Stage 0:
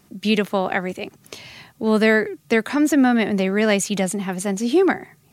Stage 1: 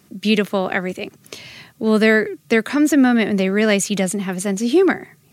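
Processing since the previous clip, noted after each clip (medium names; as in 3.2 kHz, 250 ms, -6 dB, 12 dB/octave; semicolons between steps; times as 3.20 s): high-pass 80 Hz; peaking EQ 850 Hz -6 dB 0.52 oct; trim +2.5 dB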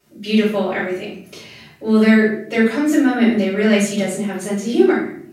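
reverberation RT60 0.60 s, pre-delay 4 ms, DRR -10 dB; trim -16.5 dB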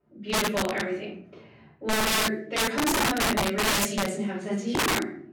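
integer overflow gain 12 dB; level-controlled noise filter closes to 1 kHz, open at -15 dBFS; trim -7 dB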